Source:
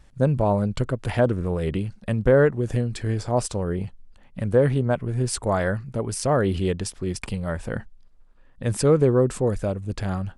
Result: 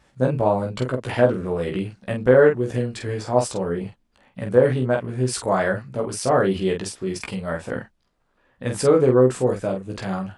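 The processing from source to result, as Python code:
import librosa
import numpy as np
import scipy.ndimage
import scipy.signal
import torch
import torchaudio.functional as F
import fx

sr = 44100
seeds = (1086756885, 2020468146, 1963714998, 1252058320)

p1 = fx.highpass(x, sr, hz=260.0, slope=6)
p2 = fx.high_shelf(p1, sr, hz=5600.0, db=-5.5)
p3 = p2 + fx.room_early_taps(p2, sr, ms=(16, 47), db=(-3.0, -5.0), dry=0)
y = p3 * librosa.db_to_amplitude(1.5)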